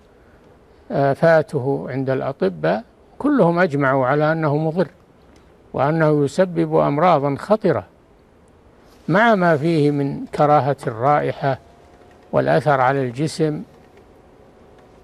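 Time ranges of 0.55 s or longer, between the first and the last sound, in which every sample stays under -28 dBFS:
4.87–5.74 s
7.82–9.08 s
11.56–12.33 s

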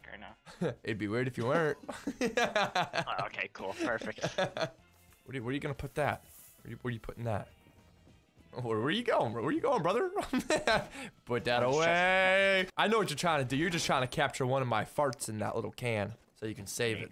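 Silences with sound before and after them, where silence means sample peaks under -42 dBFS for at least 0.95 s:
7.44–8.53 s

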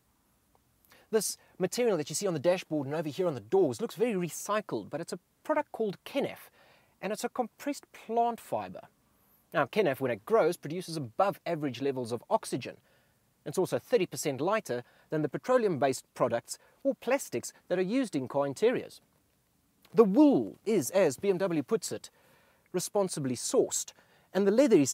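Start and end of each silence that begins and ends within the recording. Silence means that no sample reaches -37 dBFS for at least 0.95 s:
18.86–19.95 s

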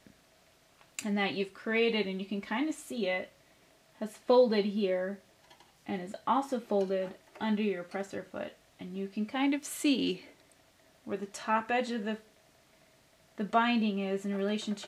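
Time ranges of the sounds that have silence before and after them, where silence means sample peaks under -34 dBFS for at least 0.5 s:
0.99–3.24 s
4.01–5.13 s
5.89–10.14 s
11.09–12.15 s

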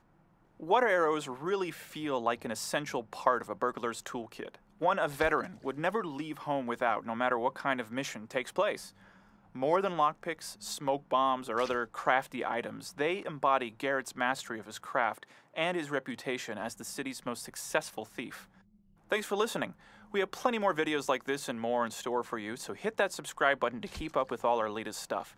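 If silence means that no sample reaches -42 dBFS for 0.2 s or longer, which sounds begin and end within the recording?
0.60–4.54 s
4.81–8.88 s
9.55–15.23 s
15.56–18.41 s
19.10–19.71 s

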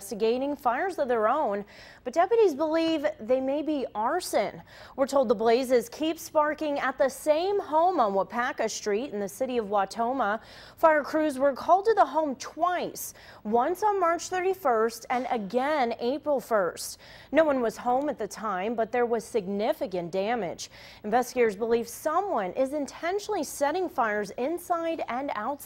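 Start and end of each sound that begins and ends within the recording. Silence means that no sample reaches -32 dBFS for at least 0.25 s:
2.07–4.55 s
4.98–10.36 s
10.83–13.09 s
13.46–16.93 s
17.33–20.65 s

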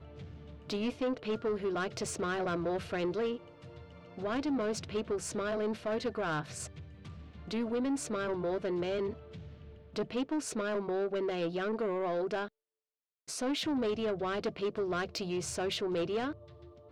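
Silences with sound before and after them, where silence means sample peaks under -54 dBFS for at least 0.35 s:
12.48–13.28 s

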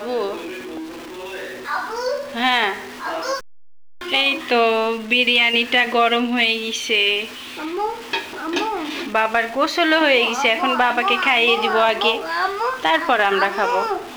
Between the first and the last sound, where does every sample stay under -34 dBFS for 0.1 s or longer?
3.40–4.01 s

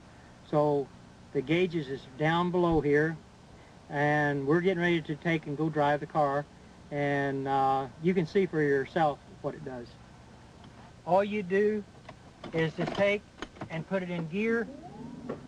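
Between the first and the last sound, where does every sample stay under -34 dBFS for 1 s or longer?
9.81–11.07 s

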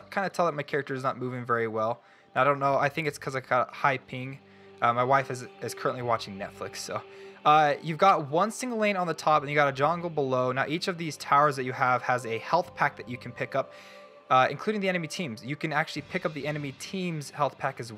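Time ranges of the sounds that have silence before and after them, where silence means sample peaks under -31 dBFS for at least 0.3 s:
2.36–4.33 s
4.82–6.98 s
7.45–13.62 s

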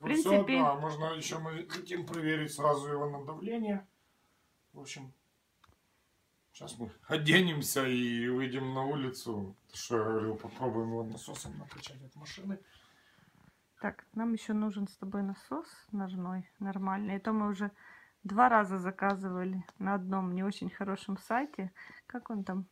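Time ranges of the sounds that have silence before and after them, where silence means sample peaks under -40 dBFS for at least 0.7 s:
4.78–5.05 s
6.57–12.55 s

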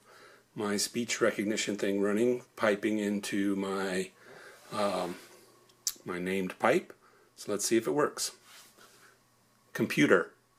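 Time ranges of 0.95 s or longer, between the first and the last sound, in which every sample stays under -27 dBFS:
8.27–9.76 s

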